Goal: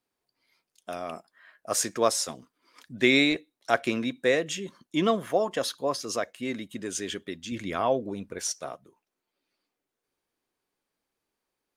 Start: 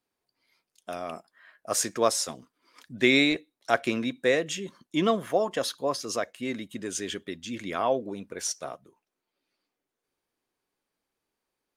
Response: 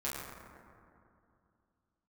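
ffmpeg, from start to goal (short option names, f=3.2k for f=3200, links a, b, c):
-filter_complex "[0:a]asettb=1/sr,asplit=3[a][b][c];[a]atrim=end=7.524[d];[b]atrim=start=7.52:end=8.39,asetpts=PTS-STARTPTS,afade=t=in:d=0.004:c=qsin,afade=t=out:st=0.866:d=0.004:c=qsin,lowshelf=f=110:g=11[e];[c]atrim=start=8.386[f];[d][e]acrossfade=d=0.004:c1=hsin:c2=qsin[g];[g][f]acrossfade=d=0.004:c1=qsin:c2=hsin"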